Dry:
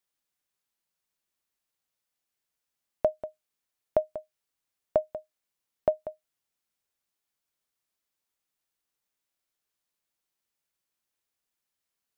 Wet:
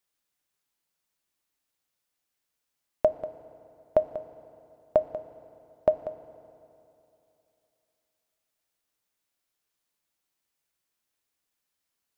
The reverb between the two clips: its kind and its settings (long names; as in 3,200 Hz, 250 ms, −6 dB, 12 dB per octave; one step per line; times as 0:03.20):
feedback delay network reverb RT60 2.9 s, high-frequency decay 0.8×, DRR 11.5 dB
level +2.5 dB